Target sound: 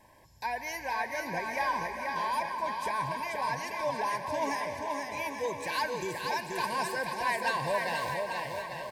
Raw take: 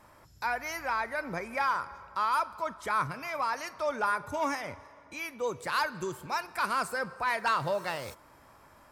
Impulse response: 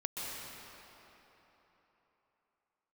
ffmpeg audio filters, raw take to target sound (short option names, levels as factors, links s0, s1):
-filter_complex "[0:a]asuperstop=centerf=1300:order=20:qfactor=3.1,aecho=1:1:480|840|1110|1312|1464:0.631|0.398|0.251|0.158|0.1,asplit=2[s0][s1];[1:a]atrim=start_sample=2205,lowshelf=f=320:g=-11[s2];[s1][s2]afir=irnorm=-1:irlink=0,volume=0.398[s3];[s0][s3]amix=inputs=2:normalize=0,volume=0.708"